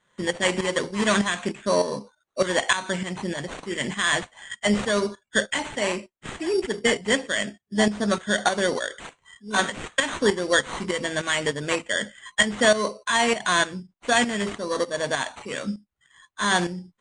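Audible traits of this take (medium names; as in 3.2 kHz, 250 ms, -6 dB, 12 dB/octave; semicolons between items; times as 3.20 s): tremolo saw up 3.3 Hz, depth 70%; aliases and images of a low sample rate 5.1 kHz, jitter 0%; MP3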